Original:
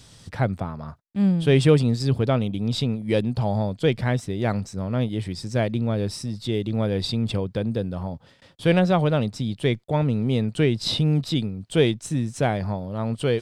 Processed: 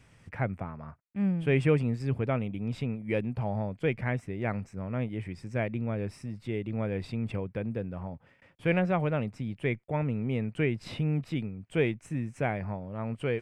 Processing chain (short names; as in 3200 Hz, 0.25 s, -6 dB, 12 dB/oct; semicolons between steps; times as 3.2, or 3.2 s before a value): resonant high shelf 3000 Hz -8.5 dB, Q 3; gain -8 dB